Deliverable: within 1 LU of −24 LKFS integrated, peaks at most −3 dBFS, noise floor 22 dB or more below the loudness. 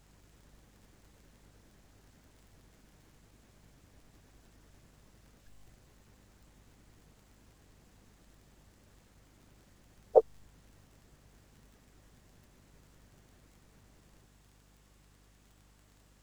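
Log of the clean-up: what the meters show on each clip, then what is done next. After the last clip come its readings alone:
crackle rate 21 per second; mains hum 50 Hz; hum harmonics up to 300 Hz; level of the hum −62 dBFS; integrated loudness −29.0 LKFS; sample peak −6.5 dBFS; target loudness −24.0 LKFS
→ click removal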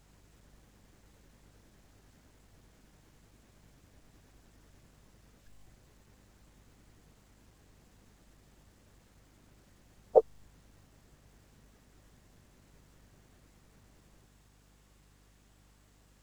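crackle rate 0.062 per second; mains hum 50 Hz; hum harmonics up to 300 Hz; level of the hum −62 dBFS
→ hum removal 50 Hz, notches 6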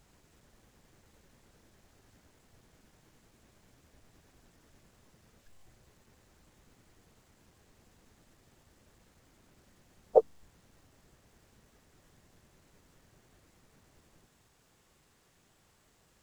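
mains hum none found; integrated loudness −29.0 LKFS; sample peak −6.5 dBFS; target loudness −24.0 LKFS
→ level +5 dB
brickwall limiter −3 dBFS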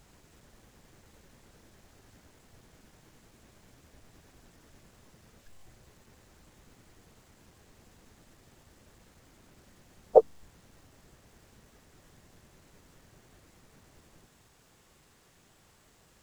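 integrated loudness −24.5 LKFS; sample peak −3.0 dBFS; background noise floor −63 dBFS

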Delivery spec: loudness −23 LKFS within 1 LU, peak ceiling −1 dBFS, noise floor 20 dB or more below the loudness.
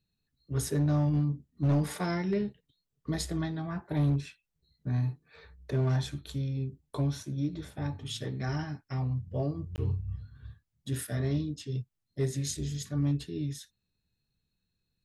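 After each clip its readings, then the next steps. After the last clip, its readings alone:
share of clipped samples 0.8%; peaks flattened at −21.5 dBFS; number of dropouts 1; longest dropout 19 ms; integrated loudness −32.5 LKFS; sample peak −21.5 dBFS; target loudness −23.0 LKFS
→ clipped peaks rebuilt −21.5 dBFS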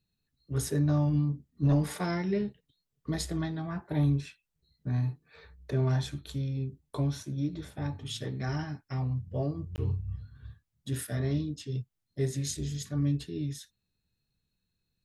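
share of clipped samples 0.0%; number of dropouts 1; longest dropout 19 ms
→ repair the gap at 0:09.76, 19 ms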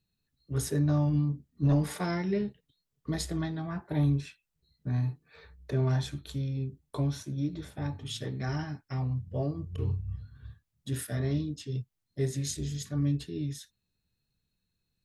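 number of dropouts 0; integrated loudness −32.0 LKFS; sample peak −15.5 dBFS; target loudness −23.0 LKFS
→ level +9 dB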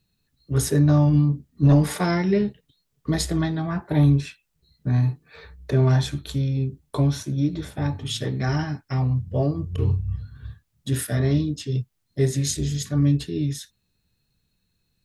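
integrated loudness −23.0 LKFS; sample peak −6.5 dBFS; background noise floor −74 dBFS

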